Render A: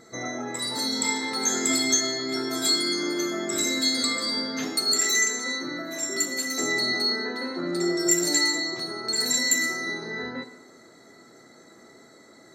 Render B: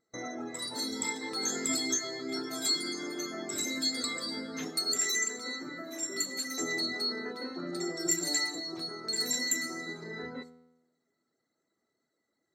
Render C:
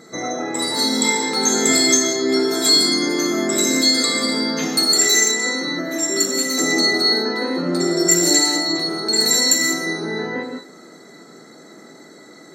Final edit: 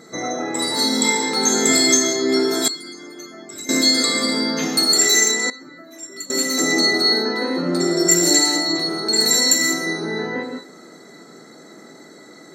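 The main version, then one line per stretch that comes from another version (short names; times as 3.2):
C
2.68–3.69 from B
5.5–6.3 from B
not used: A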